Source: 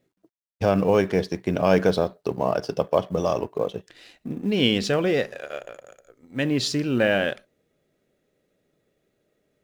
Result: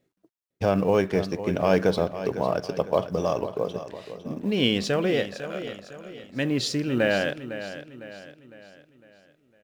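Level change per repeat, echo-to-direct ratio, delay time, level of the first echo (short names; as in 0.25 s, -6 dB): -7.0 dB, -11.0 dB, 0.505 s, -12.0 dB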